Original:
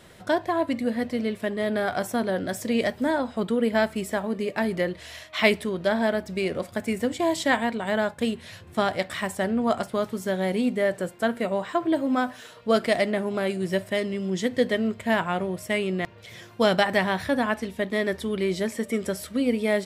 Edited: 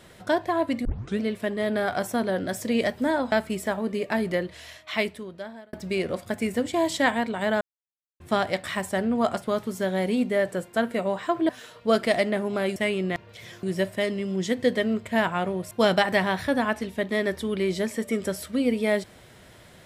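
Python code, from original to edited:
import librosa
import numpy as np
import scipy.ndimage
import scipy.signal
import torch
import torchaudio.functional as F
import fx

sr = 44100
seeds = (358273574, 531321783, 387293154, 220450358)

y = fx.edit(x, sr, fx.tape_start(start_s=0.85, length_s=0.35),
    fx.cut(start_s=3.32, length_s=0.46),
    fx.fade_out_span(start_s=4.75, length_s=1.44),
    fx.silence(start_s=8.07, length_s=0.59),
    fx.cut(start_s=11.95, length_s=0.35),
    fx.move(start_s=15.65, length_s=0.87, to_s=13.57), tone=tone)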